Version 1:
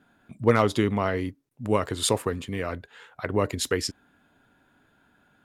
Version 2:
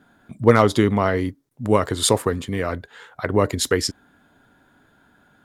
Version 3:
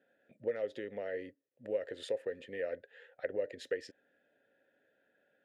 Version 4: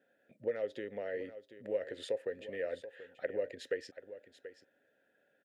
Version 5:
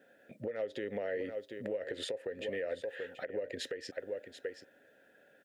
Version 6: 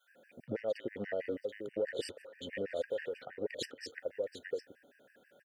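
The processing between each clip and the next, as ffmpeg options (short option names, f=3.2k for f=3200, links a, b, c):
-af "equalizer=f=2.6k:t=o:w=0.35:g=-6,volume=6dB"
-filter_complex "[0:a]acompressor=threshold=-20dB:ratio=6,asplit=3[a][b][c];[a]bandpass=f=530:t=q:w=8,volume=0dB[d];[b]bandpass=f=1.84k:t=q:w=8,volume=-6dB[e];[c]bandpass=f=2.48k:t=q:w=8,volume=-9dB[f];[d][e][f]amix=inputs=3:normalize=0,volume=-2dB"
-af "aecho=1:1:733:0.211"
-af "acompressor=threshold=-39dB:ratio=6,alimiter=level_in=13.5dB:limit=-24dB:level=0:latency=1:release=169,volume=-13.5dB,volume=10dB"
-filter_complex "[0:a]acrossover=split=1200[a][b];[a]adelay=80[c];[c][b]amix=inputs=2:normalize=0,afftfilt=real='re*gt(sin(2*PI*6.2*pts/sr)*(1-2*mod(floor(b*sr/1024/1500),2)),0)':imag='im*gt(sin(2*PI*6.2*pts/sr)*(1-2*mod(floor(b*sr/1024/1500),2)),0)':win_size=1024:overlap=0.75,volume=3.5dB"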